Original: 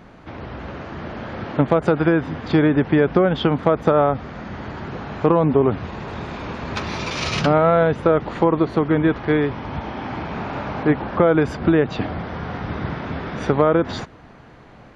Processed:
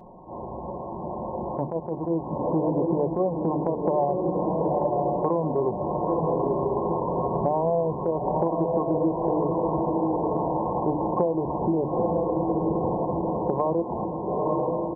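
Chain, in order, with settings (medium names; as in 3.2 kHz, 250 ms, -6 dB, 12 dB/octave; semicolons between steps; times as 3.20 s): brick-wall FIR low-pass 1.1 kHz; bass shelf 380 Hz -10 dB; hum notches 50/100/150/200/250/300/350 Hz; comb 5.5 ms, depth 43%; on a send: echo that smears into a reverb 921 ms, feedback 51%, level -4.5 dB; on the sum: compression, threshold -24 dBFS, peak gain reduction 10 dB; attacks held to a fixed rise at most 150 dB/s; trim +4 dB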